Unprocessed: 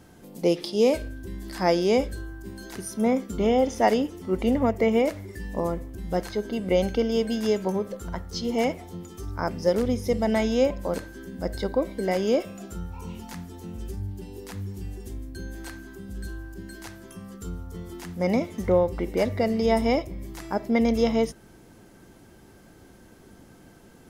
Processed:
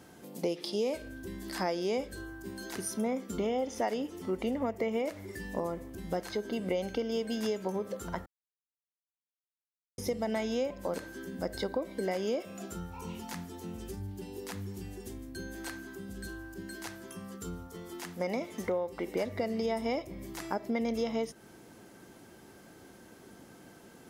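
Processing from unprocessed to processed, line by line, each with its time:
8.26–9.98 mute
17.67–19.16 low shelf 190 Hz -9.5 dB
whole clip: HPF 210 Hz 6 dB/oct; compressor 4:1, threshold -30 dBFS

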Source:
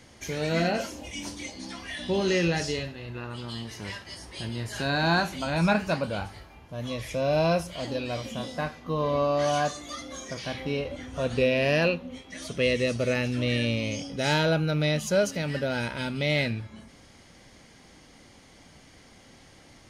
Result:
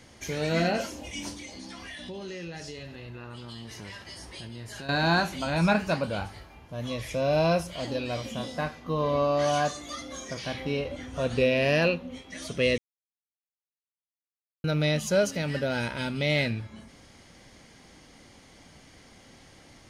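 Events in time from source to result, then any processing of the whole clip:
1.33–4.89 compressor 4:1, threshold -38 dBFS
12.78–14.64 mute

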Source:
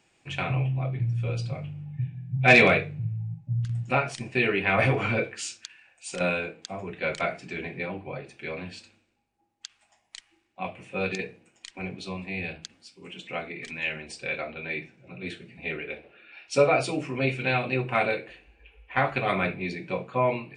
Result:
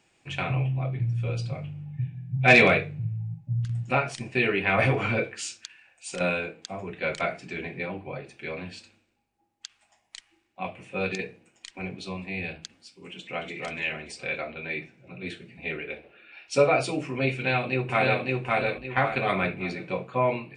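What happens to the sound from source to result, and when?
13.12–13.53 echo throw 0.29 s, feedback 40%, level -3 dB
17.33–18.22 echo throw 0.56 s, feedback 35%, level -1 dB

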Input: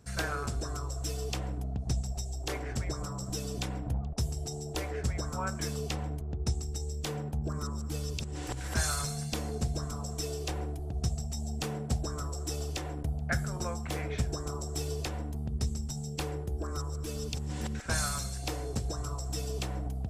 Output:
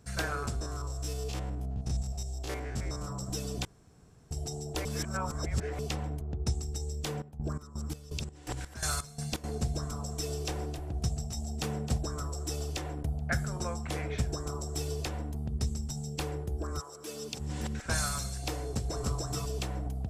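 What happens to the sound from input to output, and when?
0.56–3.08 stepped spectrum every 50 ms
3.65–4.31 room tone
4.85–5.79 reverse
7.04–9.44 chopper 2.8 Hz
10.02–11.98 echo 0.265 s -10.5 dB
13.39–14.13 LPF 12000 Hz 24 dB/oct
16.79–17.39 HPF 580 Hz -> 180 Hz
18.6–19.15 echo throw 0.3 s, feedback 10%, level -0.5 dB

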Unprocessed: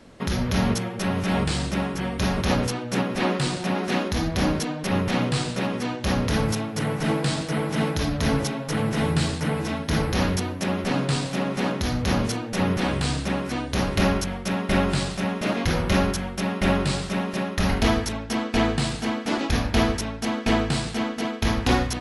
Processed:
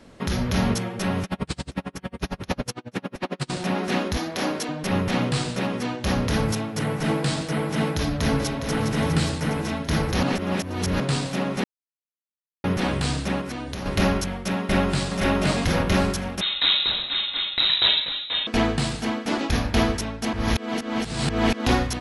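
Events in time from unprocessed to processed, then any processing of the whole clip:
1.24–3.5 dB-linear tremolo 11 Hz, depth 37 dB
4.17–4.69 HPF 300 Hz
7.98–8.79 echo throw 0.41 s, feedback 65%, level -7.5 dB
10.23–11 reverse
11.64–12.64 mute
13.41–13.86 compressor 12:1, threshold -27 dBFS
14.59–15.31 echo throw 0.52 s, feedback 30%, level -1 dB
16.41–18.47 inverted band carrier 3900 Hz
20.33–21.66 reverse

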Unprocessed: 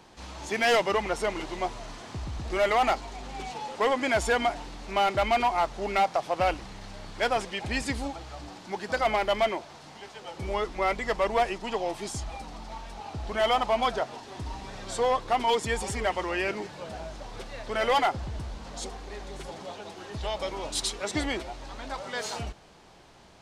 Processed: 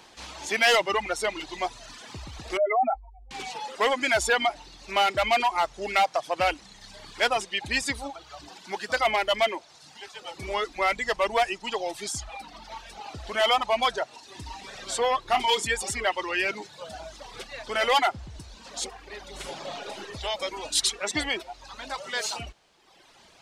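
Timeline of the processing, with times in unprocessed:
2.57–3.31 spectral contrast raised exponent 3.2
15.24–15.67 flutter echo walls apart 5.3 m, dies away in 0.23 s
19.3–19.97 reverb throw, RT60 1.8 s, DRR -2 dB
whole clip: high shelf 2100 Hz +12 dB; reverb removal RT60 1.3 s; tone controls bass -5 dB, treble -5 dB

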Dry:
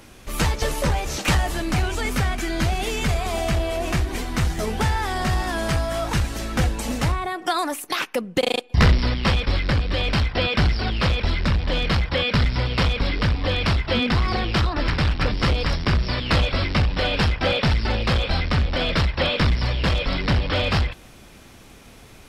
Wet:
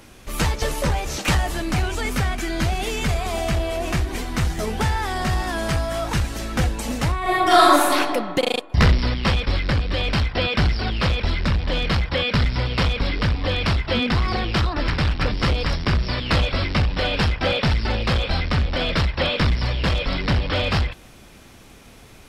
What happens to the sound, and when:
7.2–7.92 reverb throw, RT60 1.7 s, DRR -10 dB

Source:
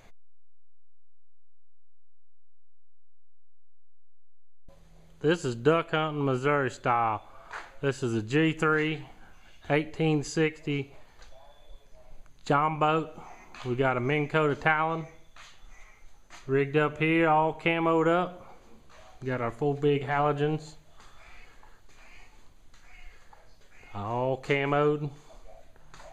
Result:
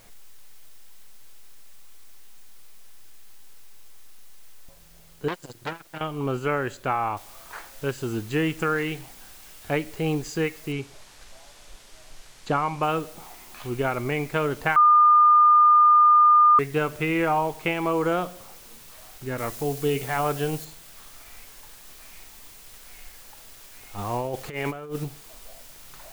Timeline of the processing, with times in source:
5.28–6.01 core saturation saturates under 2900 Hz
7.17 noise floor step -56 dB -48 dB
10.72–12.83 LPF 8000 Hz
14.76–16.59 bleep 1210 Hz -12 dBFS
19.38–20.65 high shelf 3800 Hz +9 dB
23.98–25.04 negative-ratio compressor -29 dBFS, ratio -0.5

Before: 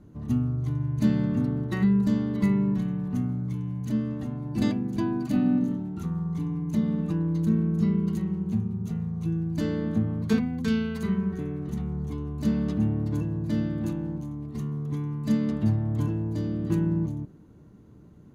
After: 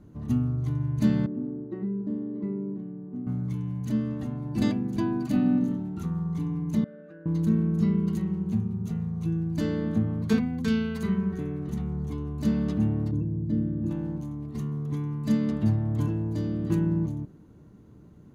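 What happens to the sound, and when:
1.26–3.27 band-pass 350 Hz, Q 2.3
6.84–7.26 double band-pass 940 Hz, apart 1.4 oct
13.11–13.91 formant sharpening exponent 1.5

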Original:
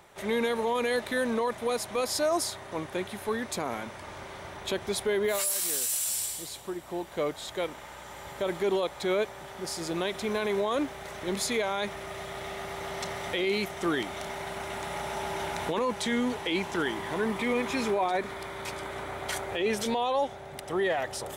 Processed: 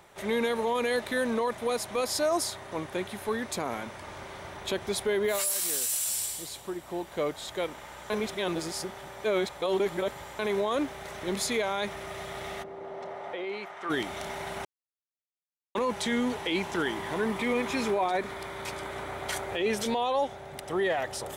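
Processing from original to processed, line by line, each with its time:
8.1–10.39 reverse
12.62–13.89 band-pass 330 Hz -> 1400 Hz, Q 1.1
14.65–15.75 mute

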